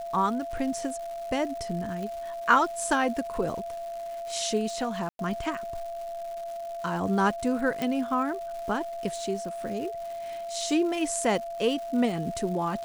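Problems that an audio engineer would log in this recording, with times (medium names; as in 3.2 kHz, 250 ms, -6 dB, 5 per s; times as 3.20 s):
crackle 360 per s -38 dBFS
whine 680 Hz -33 dBFS
2.03 s: pop
5.09–5.19 s: dropout 102 ms
7.82 s: pop -15 dBFS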